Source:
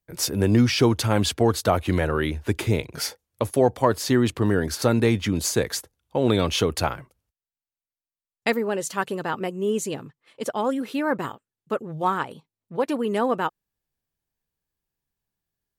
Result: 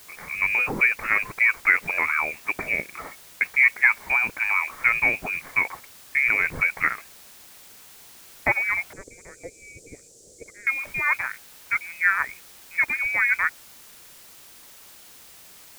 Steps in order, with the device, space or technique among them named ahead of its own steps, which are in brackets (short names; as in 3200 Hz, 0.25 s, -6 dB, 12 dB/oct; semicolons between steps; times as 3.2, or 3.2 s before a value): scrambled radio voice (BPF 390–2600 Hz; inverted band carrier 2700 Hz; white noise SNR 22 dB); 8.93–10.67 EQ curve 240 Hz 0 dB, 470 Hz +10 dB, 990 Hz -26 dB, 2500 Hz -23 dB, 7400 Hz +6 dB, 14000 Hz -20 dB; gain +3 dB